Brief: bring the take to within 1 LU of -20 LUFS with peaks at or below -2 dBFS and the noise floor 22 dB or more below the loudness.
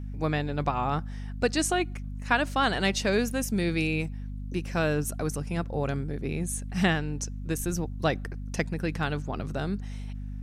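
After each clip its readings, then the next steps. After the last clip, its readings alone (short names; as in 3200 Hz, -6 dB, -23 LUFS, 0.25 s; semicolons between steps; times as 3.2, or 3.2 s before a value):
hum 50 Hz; harmonics up to 250 Hz; hum level -33 dBFS; loudness -29.0 LUFS; peak -9.5 dBFS; loudness target -20.0 LUFS
-> de-hum 50 Hz, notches 5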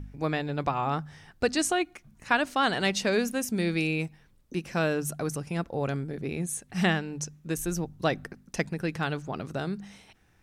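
hum none; loudness -29.5 LUFS; peak -9.5 dBFS; loudness target -20.0 LUFS
-> gain +9.5 dB; limiter -2 dBFS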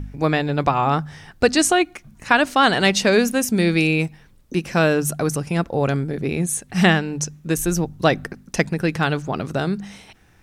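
loudness -20.0 LUFS; peak -2.0 dBFS; noise floor -52 dBFS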